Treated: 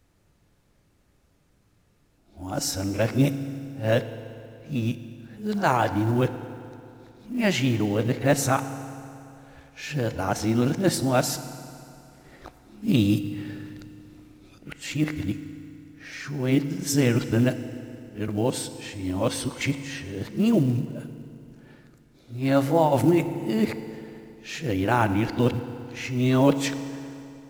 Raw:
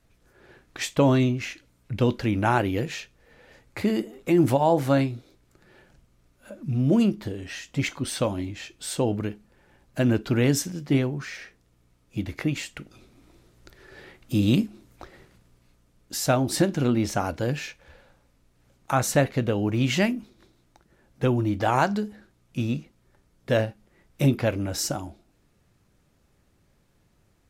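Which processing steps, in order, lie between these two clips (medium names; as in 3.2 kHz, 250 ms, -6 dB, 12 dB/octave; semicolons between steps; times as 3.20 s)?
reverse the whole clip; FDN reverb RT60 2.8 s, high-frequency decay 0.8×, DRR 10.5 dB; short-mantissa float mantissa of 4-bit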